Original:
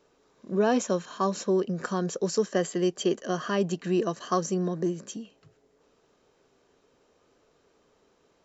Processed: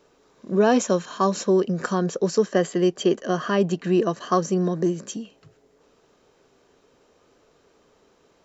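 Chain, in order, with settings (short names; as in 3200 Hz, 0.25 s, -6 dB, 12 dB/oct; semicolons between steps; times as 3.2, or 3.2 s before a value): 1.95–4.57 high shelf 5300 Hz -8.5 dB; gain +5.5 dB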